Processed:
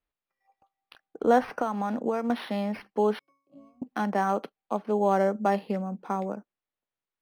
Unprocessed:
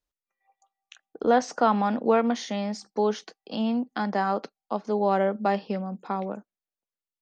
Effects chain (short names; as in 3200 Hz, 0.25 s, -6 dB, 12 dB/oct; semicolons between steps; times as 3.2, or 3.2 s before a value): 1.43–2.3 compressor 10:1, threshold -24 dBFS, peak gain reduction 9.5 dB; 3.19–3.82 octave resonator C#, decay 0.48 s; decimation joined by straight lines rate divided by 6×